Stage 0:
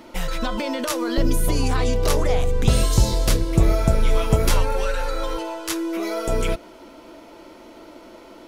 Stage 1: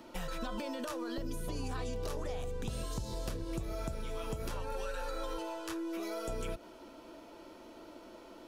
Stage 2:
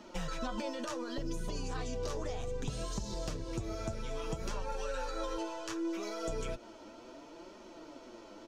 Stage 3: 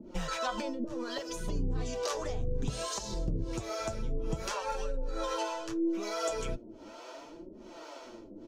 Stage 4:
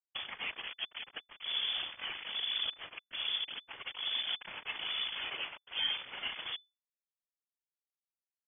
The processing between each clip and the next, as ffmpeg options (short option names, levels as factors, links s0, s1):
-filter_complex "[0:a]acompressor=threshold=0.0891:ratio=6,bandreject=f=2100:w=9.8,acrossover=split=81|2200|6800[s0][s1][s2][s3];[s0]acompressor=threshold=0.0282:ratio=4[s4];[s1]acompressor=threshold=0.0398:ratio=4[s5];[s2]acompressor=threshold=0.00708:ratio=4[s6];[s3]acompressor=threshold=0.00562:ratio=4[s7];[s4][s5][s6][s7]amix=inputs=4:normalize=0,volume=0.376"
-af "firequalizer=gain_entry='entry(3800,0);entry(6300,5);entry(11000,-12)':delay=0.05:min_phase=1,flanger=delay=4.7:depth=5.1:regen=36:speed=0.66:shape=triangular,volume=1.68"
-filter_complex "[0:a]acrossover=split=430[s0][s1];[s0]aeval=exprs='val(0)*(1-1/2+1/2*cos(2*PI*1.2*n/s))':c=same[s2];[s1]aeval=exprs='val(0)*(1-1/2-1/2*cos(2*PI*1.2*n/s))':c=same[s3];[s2][s3]amix=inputs=2:normalize=0,volume=2.66"
-af "acrusher=bits=4:mix=0:aa=0.000001,afftfilt=real='hypot(re,im)*cos(2*PI*random(0))':imag='hypot(re,im)*sin(2*PI*random(1))':win_size=512:overlap=0.75,lowpass=f=3000:t=q:w=0.5098,lowpass=f=3000:t=q:w=0.6013,lowpass=f=3000:t=q:w=0.9,lowpass=f=3000:t=q:w=2.563,afreqshift=-3500"